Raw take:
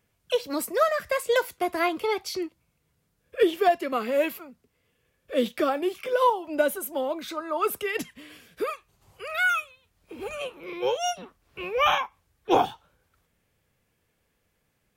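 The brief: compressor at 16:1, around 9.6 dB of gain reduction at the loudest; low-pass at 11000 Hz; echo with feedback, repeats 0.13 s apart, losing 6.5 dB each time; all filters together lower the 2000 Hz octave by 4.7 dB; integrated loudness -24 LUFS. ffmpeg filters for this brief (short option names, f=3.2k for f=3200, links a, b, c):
-af "lowpass=11k,equalizer=f=2k:t=o:g=-7,acompressor=threshold=-25dB:ratio=16,aecho=1:1:130|260|390|520|650|780:0.473|0.222|0.105|0.0491|0.0231|0.0109,volume=7.5dB"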